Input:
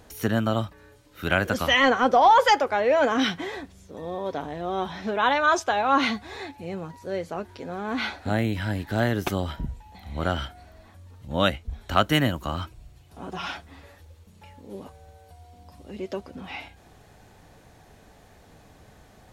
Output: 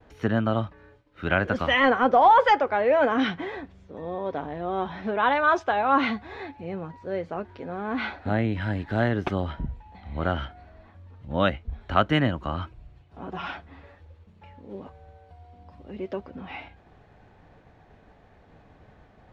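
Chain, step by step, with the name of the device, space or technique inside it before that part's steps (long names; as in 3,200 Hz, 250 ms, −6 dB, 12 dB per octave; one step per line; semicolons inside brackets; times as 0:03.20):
hearing-loss simulation (low-pass filter 2,500 Hz 12 dB per octave; downward expander −50 dBFS)
0:08.60–0:09.09: high-shelf EQ 5,100 Hz +6 dB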